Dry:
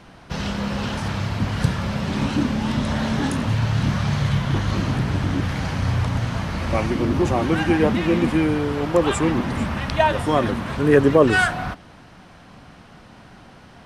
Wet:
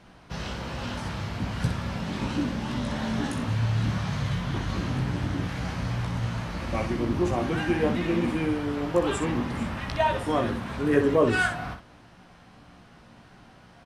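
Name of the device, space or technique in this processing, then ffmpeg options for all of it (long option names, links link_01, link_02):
slapback doubling: -filter_complex "[0:a]asplit=3[link_01][link_02][link_03];[link_02]adelay=17,volume=-5.5dB[link_04];[link_03]adelay=62,volume=-7.5dB[link_05];[link_01][link_04][link_05]amix=inputs=3:normalize=0,volume=-8dB"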